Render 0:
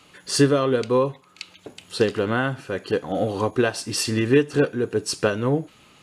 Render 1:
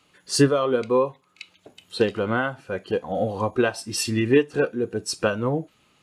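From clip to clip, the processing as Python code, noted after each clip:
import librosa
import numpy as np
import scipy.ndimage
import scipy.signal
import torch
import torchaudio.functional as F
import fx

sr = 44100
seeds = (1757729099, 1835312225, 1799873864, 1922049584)

y = fx.noise_reduce_blind(x, sr, reduce_db=9)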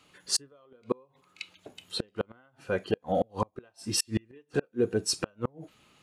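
y = fx.gate_flip(x, sr, shuts_db=-14.0, range_db=-36)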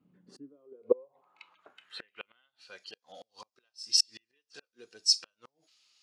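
y = fx.filter_sweep_bandpass(x, sr, from_hz=200.0, to_hz=5100.0, start_s=0.2, end_s=2.77, q=4.6)
y = y * librosa.db_to_amplitude(8.5)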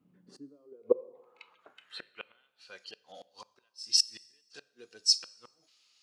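y = fx.rev_plate(x, sr, seeds[0], rt60_s=1.1, hf_ratio=0.85, predelay_ms=0, drr_db=19.5)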